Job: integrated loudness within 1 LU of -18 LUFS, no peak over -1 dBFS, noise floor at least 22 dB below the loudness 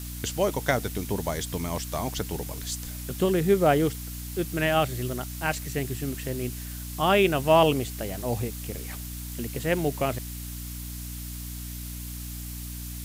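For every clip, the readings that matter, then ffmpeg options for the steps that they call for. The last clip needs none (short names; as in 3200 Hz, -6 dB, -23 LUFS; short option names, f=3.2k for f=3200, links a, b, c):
hum 60 Hz; harmonics up to 300 Hz; hum level -35 dBFS; noise floor -37 dBFS; noise floor target -50 dBFS; loudness -28.0 LUFS; peak -7.5 dBFS; loudness target -18.0 LUFS
-> -af "bandreject=f=60:t=h:w=4,bandreject=f=120:t=h:w=4,bandreject=f=180:t=h:w=4,bandreject=f=240:t=h:w=4,bandreject=f=300:t=h:w=4"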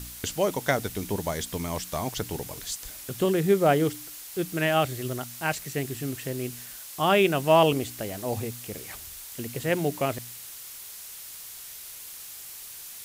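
hum none; noise floor -42 dBFS; noise floor target -50 dBFS
-> -af "afftdn=nr=8:nf=-42"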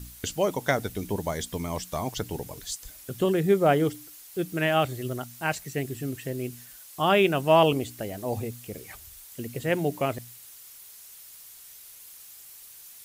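noise floor -48 dBFS; noise floor target -49 dBFS
-> -af "afftdn=nr=6:nf=-48"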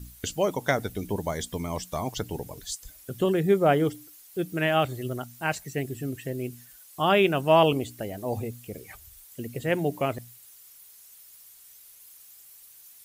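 noise floor -52 dBFS; loudness -27.0 LUFS; peak -8.0 dBFS; loudness target -18.0 LUFS
-> -af "volume=9dB,alimiter=limit=-1dB:level=0:latency=1"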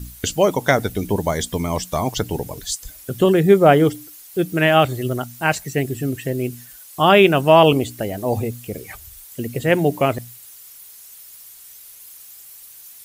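loudness -18.5 LUFS; peak -1.0 dBFS; noise floor -43 dBFS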